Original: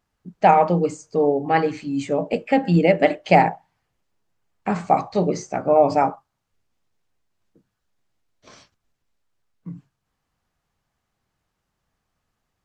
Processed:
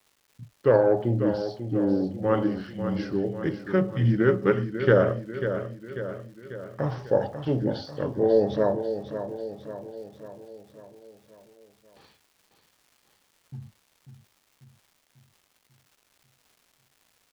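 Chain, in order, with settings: gliding tape speed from 66% -> 80%; expander -42 dBFS; crackle 440 per s -45 dBFS; on a send: feedback delay 543 ms, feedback 55%, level -9.5 dB; on the sum: loudspeaker Doppler distortion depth 0.11 ms; trim -5.5 dB

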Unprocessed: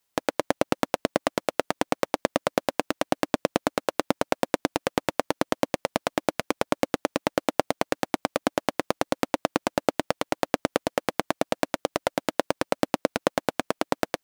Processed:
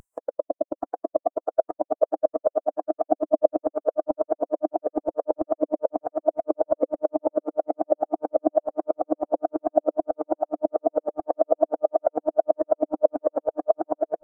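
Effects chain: peak limiter -5.5 dBFS, peak gain reduction 3.5 dB; saturation -13.5 dBFS, distortion -10 dB; on a send: echo whose repeats swap between lows and highs 324 ms, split 920 Hz, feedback 76%, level -2.5 dB; on the sum: upward compressor, threshold -28 dBFS; ten-band graphic EQ 125 Hz -5 dB, 250 Hz -8 dB, 4 kHz -11 dB, 8 kHz +6 dB; spectral contrast expander 2.5:1; trim +5.5 dB

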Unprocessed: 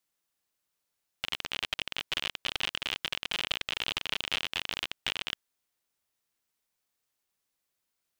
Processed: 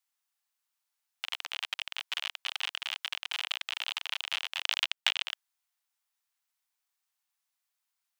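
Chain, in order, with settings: 4.62–5.25 s: transient shaper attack +9 dB, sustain -7 dB; steep high-pass 730 Hz 36 dB/octave; trim -2 dB

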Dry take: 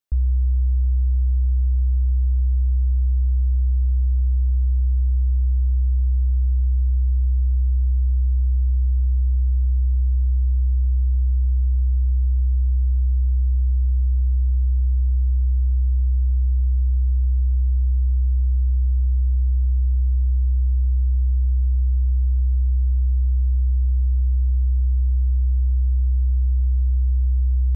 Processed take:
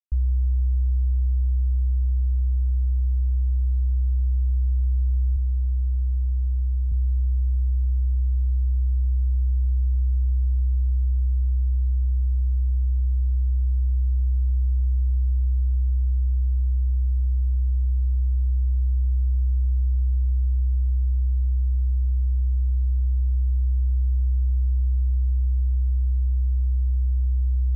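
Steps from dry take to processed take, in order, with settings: 5.36–6.92 s: high-pass 51 Hz 12 dB/octave; bit crusher 11-bit; Shepard-style flanger rising 0.21 Hz; trim -1.5 dB

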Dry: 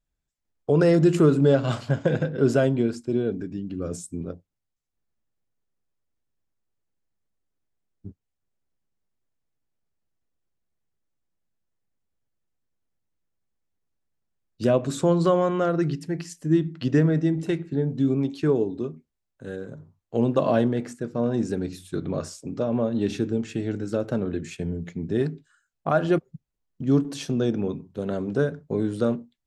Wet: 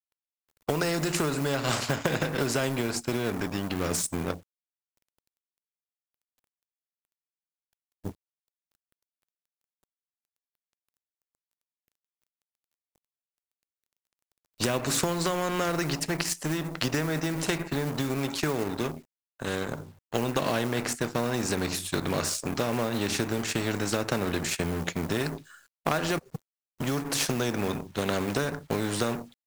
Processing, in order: companding laws mixed up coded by A; dynamic bell 3.3 kHz, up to -6 dB, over -56 dBFS, Q 3.7; compression, threshold -25 dBFS, peak gain reduction 11.5 dB; spectrum-flattening compressor 2:1; trim +5.5 dB

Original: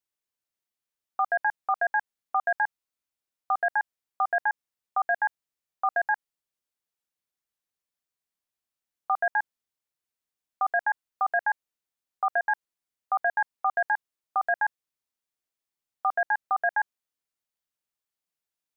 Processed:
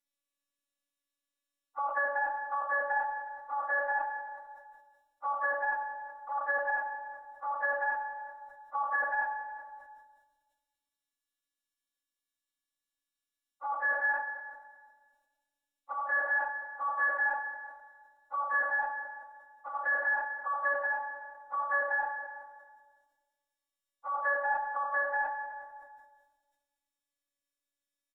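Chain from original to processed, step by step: robot voice 284 Hz; plain phase-vocoder stretch 1.5×; low-pass that closes with the level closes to 1 kHz, closed at -26.5 dBFS; feedback delay 372 ms, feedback 18%, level -16.5 dB; simulated room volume 1600 m³, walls mixed, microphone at 1.9 m; decay stretcher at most 69 dB/s

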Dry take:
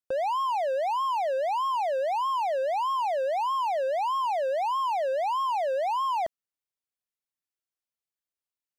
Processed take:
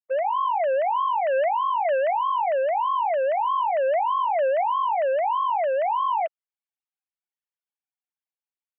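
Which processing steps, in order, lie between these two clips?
formants replaced by sine waves; 1.06–2.49 s: dynamic bell 470 Hz, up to -5 dB, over -43 dBFS, Q 1.6; level rider gain up to 11 dB; peak limiter -24.5 dBFS, peak gain reduction 17 dB; trim +6 dB

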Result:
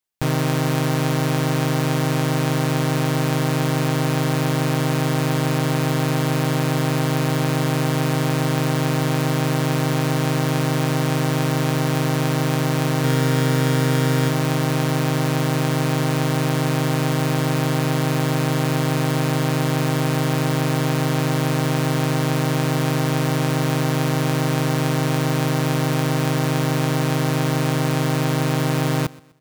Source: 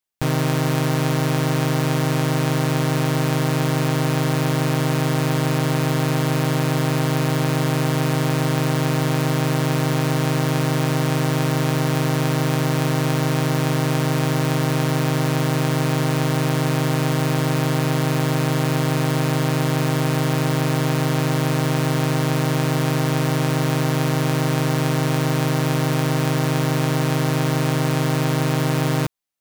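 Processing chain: 13.01–14.29 s: doubling 30 ms -4 dB; feedback delay 126 ms, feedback 35%, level -21.5 dB

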